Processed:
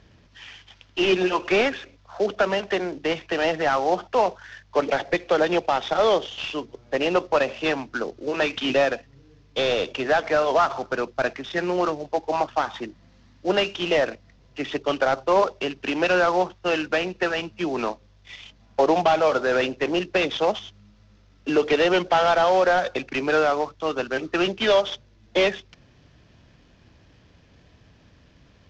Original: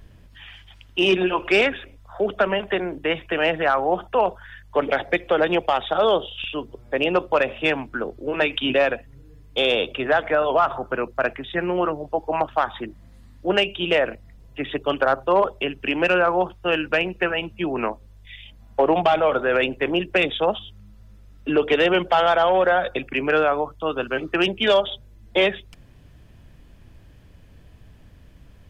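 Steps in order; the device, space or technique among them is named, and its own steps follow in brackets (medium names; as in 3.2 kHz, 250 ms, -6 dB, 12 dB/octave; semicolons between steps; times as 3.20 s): early wireless headset (high-pass 150 Hz 6 dB/octave; CVSD coder 32 kbps)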